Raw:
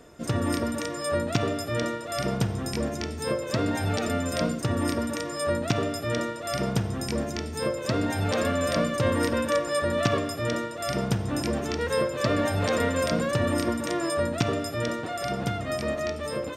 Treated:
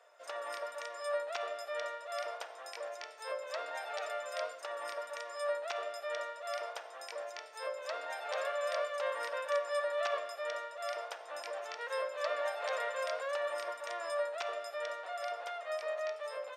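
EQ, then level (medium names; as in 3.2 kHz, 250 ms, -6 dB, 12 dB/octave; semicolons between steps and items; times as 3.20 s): elliptic high-pass 570 Hz, stop band 70 dB; treble shelf 5.5 kHz -12 dB; -6.5 dB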